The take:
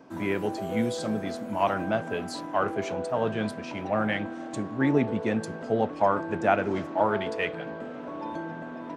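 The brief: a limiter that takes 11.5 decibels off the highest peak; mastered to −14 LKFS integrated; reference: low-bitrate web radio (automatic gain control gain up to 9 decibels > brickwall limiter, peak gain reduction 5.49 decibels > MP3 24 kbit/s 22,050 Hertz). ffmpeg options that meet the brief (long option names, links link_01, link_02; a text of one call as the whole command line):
ffmpeg -i in.wav -af "alimiter=limit=-20.5dB:level=0:latency=1,dynaudnorm=maxgain=9dB,alimiter=level_in=2dB:limit=-24dB:level=0:latency=1,volume=-2dB,volume=22dB" -ar 22050 -c:a libmp3lame -b:a 24k out.mp3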